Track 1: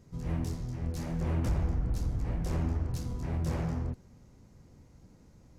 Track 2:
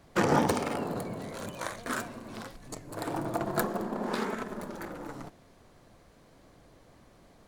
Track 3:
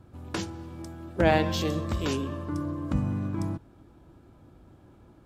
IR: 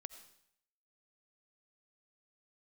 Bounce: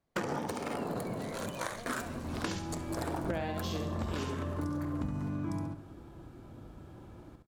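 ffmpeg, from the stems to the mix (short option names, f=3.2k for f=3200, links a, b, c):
-filter_complex "[0:a]adelay=1750,volume=-13.5dB[a];[1:a]agate=range=-25dB:threshold=-46dB:ratio=16:detection=peak,volume=-1dB,asplit=3[b][c][d];[c]volume=-4dB[e];[d]volume=-15dB[f];[2:a]adelay=2100,volume=3dB,asplit=2[g][h];[h]volume=-5dB[i];[3:a]atrim=start_sample=2205[j];[e][j]afir=irnorm=-1:irlink=0[k];[f][i]amix=inputs=2:normalize=0,aecho=0:1:68|136|204|272:1|0.23|0.0529|0.0122[l];[a][b][g][k][l]amix=inputs=5:normalize=0,acompressor=threshold=-31dB:ratio=16"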